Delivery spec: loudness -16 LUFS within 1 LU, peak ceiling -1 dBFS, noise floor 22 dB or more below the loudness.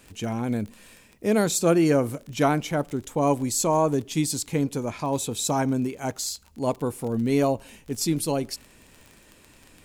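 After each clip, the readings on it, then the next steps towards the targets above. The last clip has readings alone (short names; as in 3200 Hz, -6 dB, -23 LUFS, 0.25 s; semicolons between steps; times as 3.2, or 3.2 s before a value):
ticks 26/s; loudness -25.5 LUFS; peak -8.0 dBFS; loudness target -16.0 LUFS
-> de-click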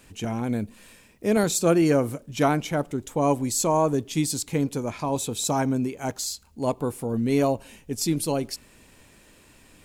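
ticks 0/s; loudness -25.5 LUFS; peak -8.0 dBFS; loudness target -16.0 LUFS
-> gain +9.5 dB; limiter -1 dBFS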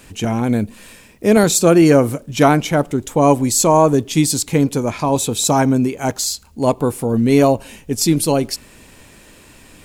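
loudness -16.0 LUFS; peak -1.0 dBFS; noise floor -46 dBFS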